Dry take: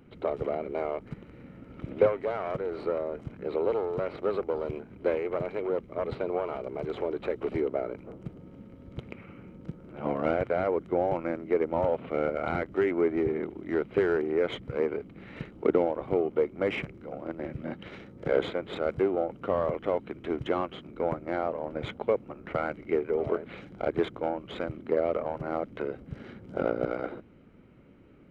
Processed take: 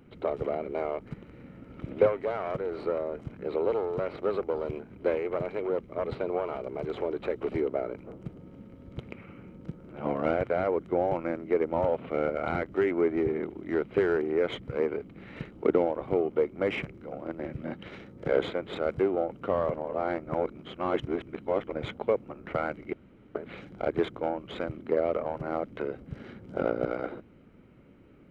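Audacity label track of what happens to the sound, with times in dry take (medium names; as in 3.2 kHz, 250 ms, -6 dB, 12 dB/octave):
19.740000	21.720000	reverse
22.930000	23.350000	room tone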